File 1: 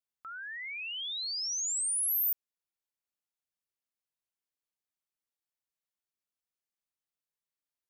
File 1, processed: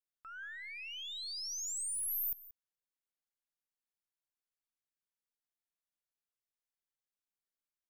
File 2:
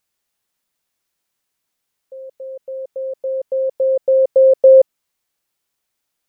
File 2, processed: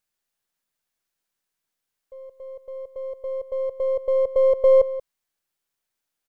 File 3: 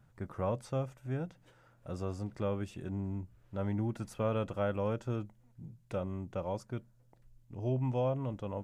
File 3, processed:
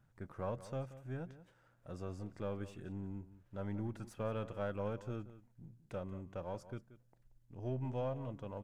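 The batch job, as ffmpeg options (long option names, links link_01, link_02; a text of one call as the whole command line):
ffmpeg -i in.wav -filter_complex "[0:a]aeval=exprs='if(lt(val(0),0),0.708*val(0),val(0))':channel_layout=same,equalizer=frequency=1600:width=6.1:gain=3.5,asplit=2[link_01][link_02];[link_02]adelay=180.8,volume=-15dB,highshelf=frequency=4000:gain=-4.07[link_03];[link_01][link_03]amix=inputs=2:normalize=0,volume=-5.5dB" out.wav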